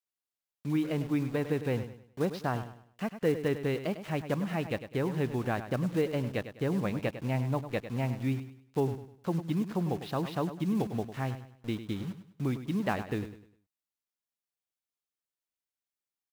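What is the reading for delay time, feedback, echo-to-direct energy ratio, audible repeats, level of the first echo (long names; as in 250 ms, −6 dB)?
101 ms, 34%, −11.0 dB, 3, −11.5 dB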